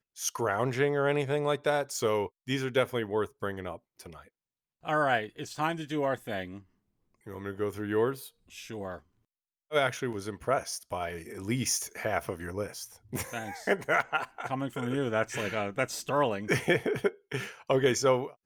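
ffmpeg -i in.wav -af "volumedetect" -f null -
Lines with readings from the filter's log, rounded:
mean_volume: -31.4 dB
max_volume: -12.8 dB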